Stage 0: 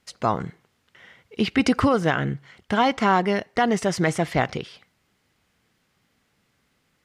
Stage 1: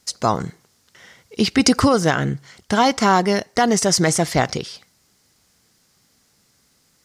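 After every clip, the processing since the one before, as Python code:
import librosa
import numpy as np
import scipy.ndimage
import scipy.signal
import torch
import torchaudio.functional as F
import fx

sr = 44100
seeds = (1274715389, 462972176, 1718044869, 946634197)

y = fx.high_shelf_res(x, sr, hz=3900.0, db=9.5, q=1.5)
y = F.gain(torch.from_numpy(y), 4.0).numpy()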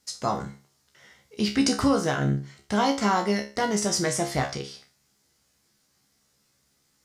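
y = fx.comb_fb(x, sr, f0_hz=69.0, decay_s=0.33, harmonics='all', damping=0.0, mix_pct=90)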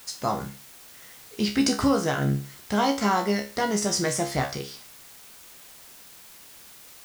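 y = fx.quant_dither(x, sr, seeds[0], bits=8, dither='triangular')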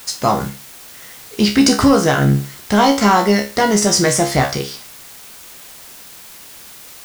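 y = fx.leveller(x, sr, passes=1)
y = F.gain(torch.from_numpy(y), 7.5).numpy()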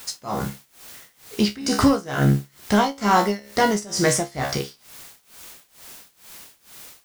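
y = x * (1.0 - 0.92 / 2.0 + 0.92 / 2.0 * np.cos(2.0 * np.pi * 2.2 * (np.arange(len(x)) / sr)))
y = F.gain(torch.from_numpy(y), -3.0).numpy()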